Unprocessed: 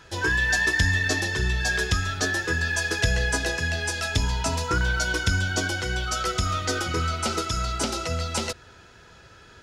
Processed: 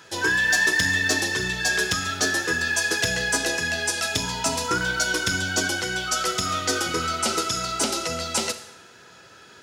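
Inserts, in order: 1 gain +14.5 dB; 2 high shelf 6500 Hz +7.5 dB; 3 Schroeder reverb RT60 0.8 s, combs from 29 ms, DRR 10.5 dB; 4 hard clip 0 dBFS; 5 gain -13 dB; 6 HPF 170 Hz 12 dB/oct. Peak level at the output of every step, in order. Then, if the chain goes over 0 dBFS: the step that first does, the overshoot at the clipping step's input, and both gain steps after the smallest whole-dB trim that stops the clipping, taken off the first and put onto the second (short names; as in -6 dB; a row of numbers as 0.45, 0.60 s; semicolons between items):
+3.5, +5.0, +5.5, 0.0, -13.0, -9.0 dBFS; step 1, 5.5 dB; step 1 +8.5 dB, step 5 -7 dB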